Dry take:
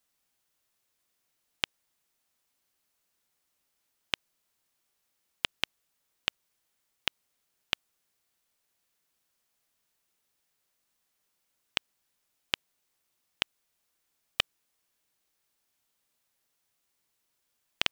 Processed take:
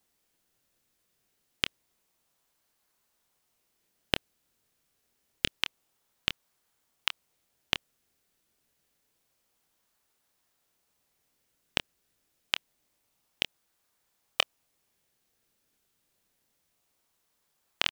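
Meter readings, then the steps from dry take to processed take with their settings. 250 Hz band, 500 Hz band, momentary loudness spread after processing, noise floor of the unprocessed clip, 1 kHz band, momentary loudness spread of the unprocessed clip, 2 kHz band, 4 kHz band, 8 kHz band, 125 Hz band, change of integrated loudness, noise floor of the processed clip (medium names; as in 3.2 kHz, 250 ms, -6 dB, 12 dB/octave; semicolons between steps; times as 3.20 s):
+7.0 dB, +5.0 dB, 3 LU, -79 dBFS, +2.5 dB, 3 LU, +2.0 dB, +2.0 dB, +2.5 dB, +7.0 dB, +2.0 dB, -76 dBFS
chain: high-pass 720 Hz 12 dB/octave; in parallel at -8.5 dB: decimation with a swept rate 27×, swing 100% 0.27 Hz; on the sum: doubling 26 ms -11.5 dB; trim +1.5 dB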